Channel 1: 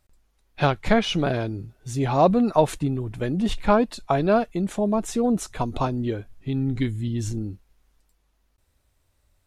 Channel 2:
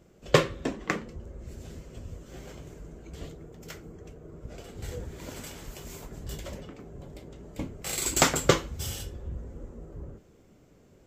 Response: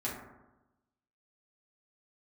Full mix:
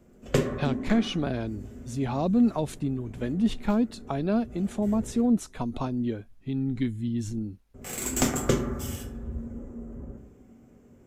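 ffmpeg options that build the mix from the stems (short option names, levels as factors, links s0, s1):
-filter_complex "[0:a]volume=0.473,asplit=2[s0][s1];[1:a]equalizer=f=4200:t=o:w=0.78:g=-9.5,aeval=exprs='0.668*(cos(1*acos(clip(val(0)/0.668,-1,1)))-cos(1*PI/2))+0.0299*(cos(8*acos(clip(val(0)/0.668,-1,1)))-cos(8*PI/2))':c=same,volume=0.631,asplit=3[s2][s3][s4];[s2]atrim=end=5.21,asetpts=PTS-STARTPTS,afade=t=out:st=5.206:d=0.004:c=hsin[s5];[s3]atrim=start=5.21:end=7.74,asetpts=PTS-STARTPTS,volume=0[s6];[s4]atrim=start=7.74,asetpts=PTS-STARTPTS,afade=t=in:d=0.004:c=hsin[s7];[s5][s6][s7]concat=n=3:v=0:a=1,asplit=2[s8][s9];[s9]volume=0.562[s10];[s1]apad=whole_len=488069[s11];[s8][s11]sidechaincompress=threshold=0.00562:ratio=8:attack=16:release=546[s12];[2:a]atrim=start_sample=2205[s13];[s10][s13]afir=irnorm=-1:irlink=0[s14];[s0][s12][s14]amix=inputs=3:normalize=0,equalizer=f=230:t=o:w=0.47:g=7.5,acrossover=split=430|3000[s15][s16][s17];[s16]acompressor=threshold=0.0282:ratio=6[s18];[s15][s18][s17]amix=inputs=3:normalize=0"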